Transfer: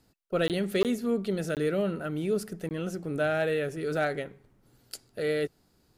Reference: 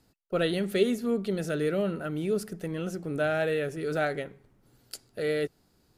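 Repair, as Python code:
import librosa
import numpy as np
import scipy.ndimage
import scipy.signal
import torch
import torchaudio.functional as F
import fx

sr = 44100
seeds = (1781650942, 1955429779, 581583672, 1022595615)

y = fx.fix_declip(x, sr, threshold_db=-18.0)
y = fx.fix_interpolate(y, sr, at_s=(0.48, 0.83, 1.55, 2.69), length_ms=18.0)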